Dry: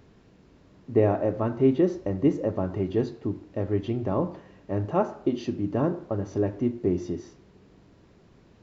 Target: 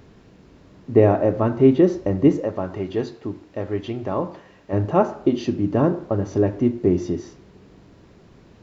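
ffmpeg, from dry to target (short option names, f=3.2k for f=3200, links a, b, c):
-filter_complex "[0:a]asettb=1/sr,asplit=3[a][b][c];[a]atrim=end=2.404[d];[b]atrim=start=2.4:end=4.73,asetpts=PTS-STARTPTS,afade=t=in:d=0.004:c=qsin,afade=t=out:st=2.326:d=0.004:c=qsin,lowshelf=f=470:g=-9[e];[c]atrim=start=4.726[f];[d][e]acrossfade=d=0.004:c1=hsin:c2=qsin[g];[g][f]acrossfade=d=0.004:c1=qsin:c2=hsin,volume=6.5dB"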